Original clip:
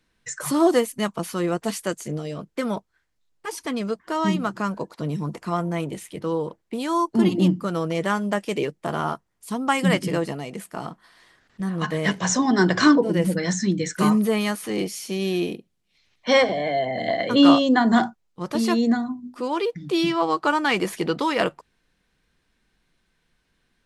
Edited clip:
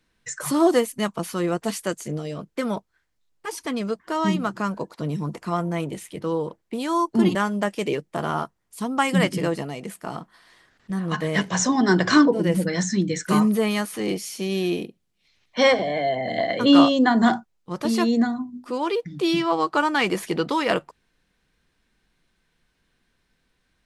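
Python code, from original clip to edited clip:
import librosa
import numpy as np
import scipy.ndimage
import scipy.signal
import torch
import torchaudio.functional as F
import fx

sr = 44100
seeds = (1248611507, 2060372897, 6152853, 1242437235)

y = fx.edit(x, sr, fx.cut(start_s=7.35, length_s=0.7), tone=tone)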